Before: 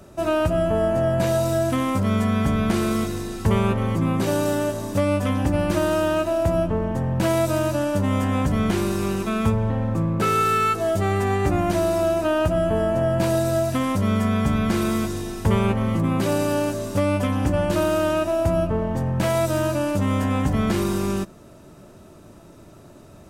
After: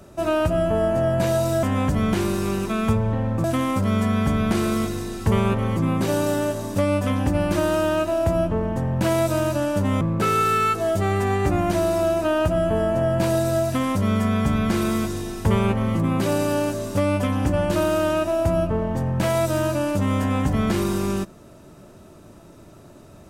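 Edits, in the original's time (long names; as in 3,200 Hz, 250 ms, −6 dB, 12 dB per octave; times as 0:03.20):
0:08.20–0:10.01: move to 0:01.63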